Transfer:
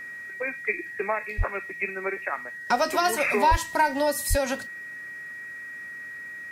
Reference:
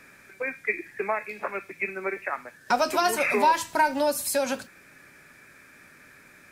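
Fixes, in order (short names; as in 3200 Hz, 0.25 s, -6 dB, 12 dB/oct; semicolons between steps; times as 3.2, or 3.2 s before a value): notch 1900 Hz, Q 30; de-plosive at 1.37/3.5/4.29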